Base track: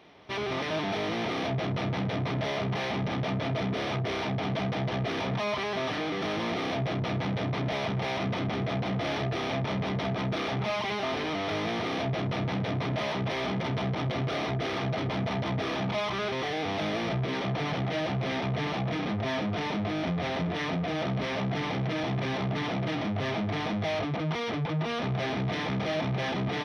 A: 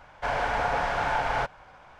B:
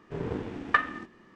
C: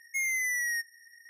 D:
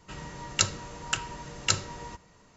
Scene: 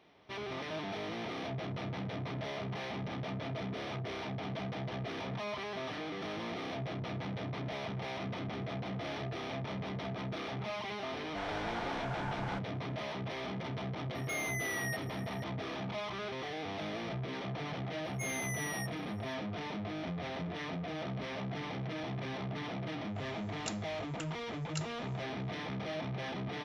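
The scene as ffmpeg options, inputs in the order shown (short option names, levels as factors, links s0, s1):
-filter_complex "[3:a]asplit=2[s0][s1];[0:a]volume=0.355[s2];[s0]acompressor=threshold=0.0112:ratio=6:attack=3.2:release=140:knee=1:detection=peak[s3];[s1]equalizer=f=7900:w=0.55:g=8[s4];[1:a]atrim=end=1.99,asetpts=PTS-STARTPTS,volume=0.2,afade=t=in:d=0.004:c=hsin,afade=t=out:st=1.986:d=0.004:c=hsin,adelay=11130[s5];[s3]atrim=end=1.29,asetpts=PTS-STARTPTS,afade=t=in:d=0.004:c=hsin,afade=t=out:st=1.286:d=0.004:c=hsin,adelay=14150[s6];[s4]atrim=end=1.29,asetpts=PTS-STARTPTS,volume=0.211,afade=t=in:d=0.004:c=hsin,afade=t=out:st=1.286:d=0.004:c=hsin,adelay=18050[s7];[4:a]atrim=end=2.56,asetpts=PTS-STARTPTS,volume=0.133,afade=t=in:d=0.004:c=hsin,afade=t=out:st=2.556:d=0.004:c=hsin,adelay=23070[s8];[s2][s5][s6][s7][s8]amix=inputs=5:normalize=0"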